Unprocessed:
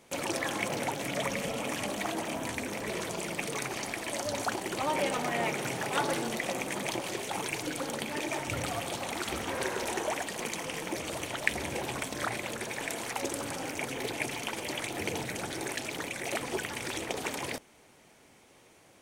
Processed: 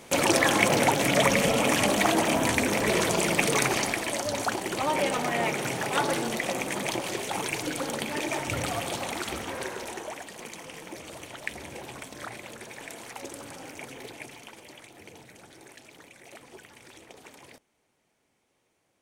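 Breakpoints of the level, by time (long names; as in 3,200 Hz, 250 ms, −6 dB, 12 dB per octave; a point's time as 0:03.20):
0:03.70 +10.5 dB
0:04.22 +3.5 dB
0:09.00 +3.5 dB
0:10.15 −6 dB
0:13.89 −6 dB
0:14.95 −14.5 dB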